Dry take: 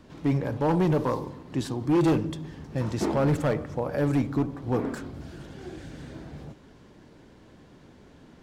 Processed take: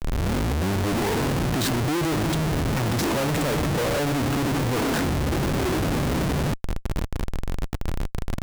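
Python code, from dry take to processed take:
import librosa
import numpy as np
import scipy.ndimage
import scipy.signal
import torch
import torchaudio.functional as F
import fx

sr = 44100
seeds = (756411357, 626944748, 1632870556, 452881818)

y = fx.tape_start_head(x, sr, length_s=1.31)
y = fx.schmitt(y, sr, flips_db=-44.5)
y = y * 10.0 ** (4.5 / 20.0)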